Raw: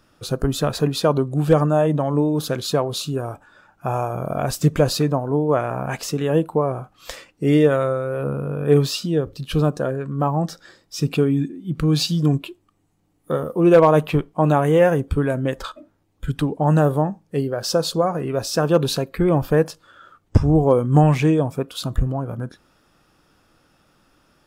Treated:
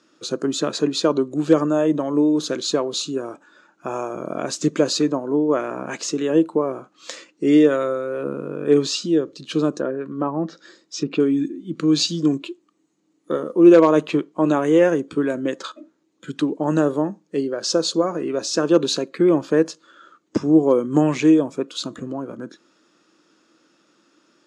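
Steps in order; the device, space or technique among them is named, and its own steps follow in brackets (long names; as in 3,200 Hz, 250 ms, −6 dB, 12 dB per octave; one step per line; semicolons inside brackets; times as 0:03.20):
television speaker (loudspeaker in its box 200–7,900 Hz, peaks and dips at 330 Hz +8 dB, 770 Hz −8 dB, 4,100 Hz +4 dB, 6,700 Hz +8 dB)
0:09.74–0:11.20: treble cut that deepens with the level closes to 2,000 Hz, closed at −19.5 dBFS
level −1 dB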